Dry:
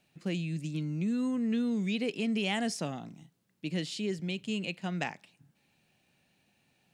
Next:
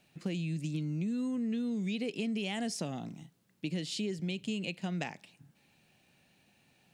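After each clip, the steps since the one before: dynamic EQ 1300 Hz, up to -5 dB, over -50 dBFS, Q 0.89; compressor, threshold -35 dBFS, peak gain reduction 7.5 dB; gain +3.5 dB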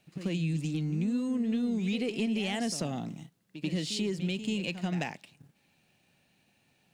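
sample leveller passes 1; on a send: reverse echo 88 ms -11 dB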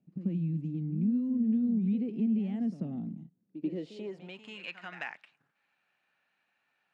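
band-pass sweep 210 Hz -> 1400 Hz, 3.35–4.6; dynamic EQ 2300 Hz, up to +4 dB, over -60 dBFS, Q 0.98; gain +3 dB

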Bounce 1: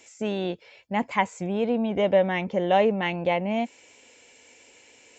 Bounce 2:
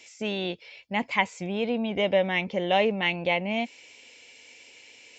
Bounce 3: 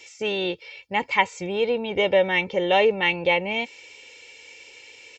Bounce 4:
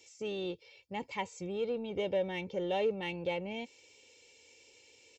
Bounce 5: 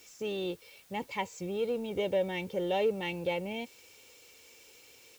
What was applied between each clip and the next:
band shelf 3400 Hz +8.5 dB; gain -3 dB
comb 2.2 ms, depth 59%; gain +3 dB
HPF 46 Hz; bell 1700 Hz -13.5 dB 2.4 oct; in parallel at -11 dB: soft clip -31.5 dBFS, distortion -6 dB; on the sum: gain -8.5 dB
added noise white -64 dBFS; gain +2.5 dB

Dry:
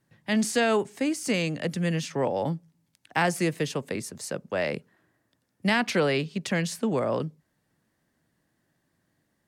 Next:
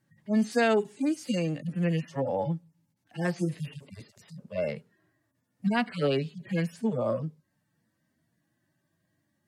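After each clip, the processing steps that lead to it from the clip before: median-filter separation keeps harmonic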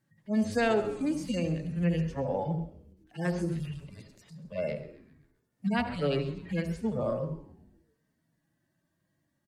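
frequency-shifting echo 0.132 s, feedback 53%, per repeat -120 Hz, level -17 dB; on a send at -9.5 dB: reverb RT60 0.55 s, pre-delay 66 ms; on the sum: gain -3 dB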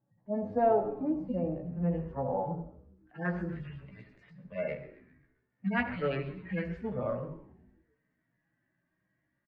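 low-pass sweep 780 Hz -> 2000 Hz, 1.49–3.94; doubler 16 ms -5 dB; gain -4.5 dB

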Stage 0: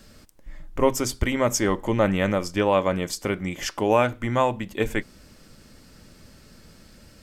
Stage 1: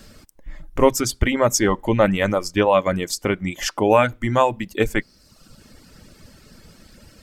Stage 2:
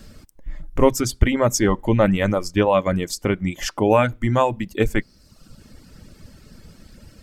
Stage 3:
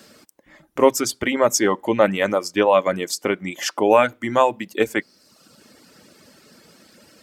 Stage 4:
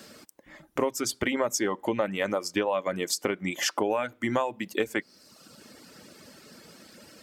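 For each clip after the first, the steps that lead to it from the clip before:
reverb removal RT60 0.93 s; gain +5 dB
low shelf 280 Hz +7 dB; gain -2.5 dB
HPF 320 Hz 12 dB/oct; gain +2.5 dB
compressor 10:1, threshold -23 dBFS, peak gain reduction 15 dB

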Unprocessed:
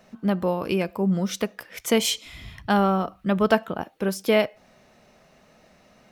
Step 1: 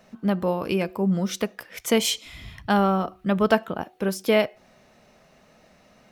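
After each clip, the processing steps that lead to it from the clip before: de-hum 368.6 Hz, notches 2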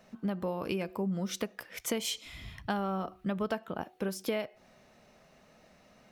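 compressor 5:1, threshold -25 dBFS, peak gain reduction 11.5 dB; gain -4.5 dB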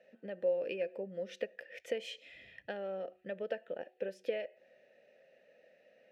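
vowel filter e; gain +6.5 dB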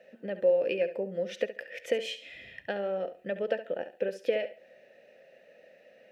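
flutter echo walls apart 11.9 m, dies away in 0.33 s; gain +7.5 dB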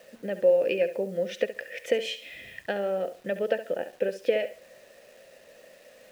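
bit-crush 10-bit; gain +3.5 dB

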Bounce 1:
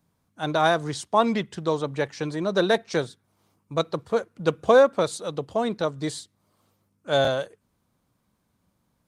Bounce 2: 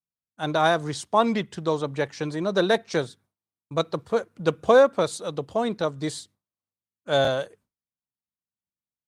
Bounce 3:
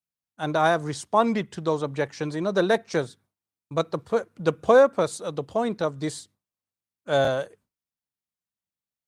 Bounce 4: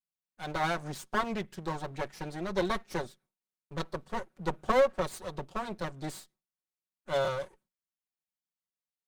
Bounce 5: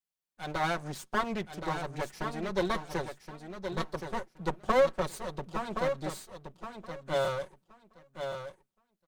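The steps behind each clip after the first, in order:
expander -47 dBFS
dynamic EQ 3600 Hz, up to -5 dB, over -43 dBFS, Q 1.6
minimum comb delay 5.4 ms; gain -6.5 dB
feedback echo 1.072 s, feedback 16%, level -7.5 dB

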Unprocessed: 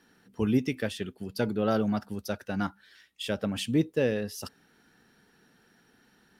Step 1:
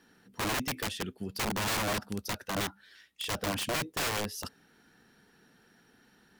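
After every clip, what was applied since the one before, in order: wrapped overs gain 26 dB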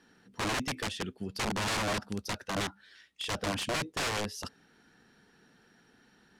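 LPF 8600 Hz 12 dB/oct

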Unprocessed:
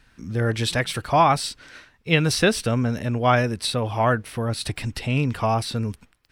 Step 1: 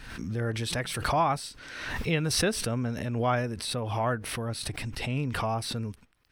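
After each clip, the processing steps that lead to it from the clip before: notch 7200 Hz, Q 15; dynamic EQ 3500 Hz, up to -4 dB, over -35 dBFS, Q 0.8; backwards sustainer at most 44 dB/s; gain -8 dB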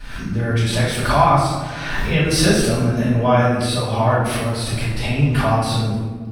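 reverb RT60 1.5 s, pre-delay 3 ms, DRR -11 dB; gain -4 dB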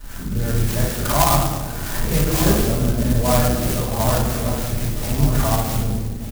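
octaver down 2 oct, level 0 dB; echo 1.199 s -11.5 dB; clock jitter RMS 0.11 ms; gain -3 dB

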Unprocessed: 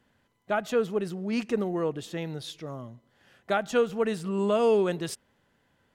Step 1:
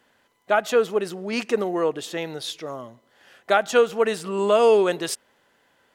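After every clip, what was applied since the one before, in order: tone controls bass -15 dB, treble +1 dB; gain +8 dB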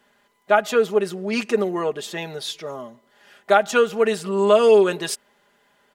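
comb 4.9 ms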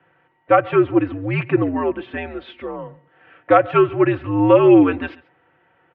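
mistuned SSB -86 Hz 170–2700 Hz; echo 0.137 s -22 dB; gain +3 dB

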